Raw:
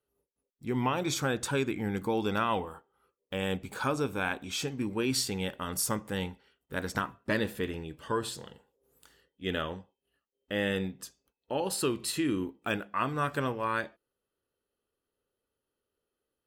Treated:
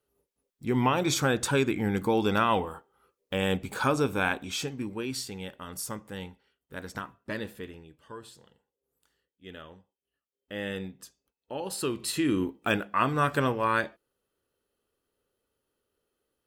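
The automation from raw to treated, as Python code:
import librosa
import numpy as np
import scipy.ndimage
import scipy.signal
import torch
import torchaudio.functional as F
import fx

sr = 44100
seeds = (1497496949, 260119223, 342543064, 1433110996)

y = fx.gain(x, sr, db=fx.line((4.27, 4.5), (5.19, -5.5), (7.48, -5.5), (8.03, -12.5), (9.63, -12.5), (10.69, -4.0), (11.57, -4.0), (12.44, 5.0)))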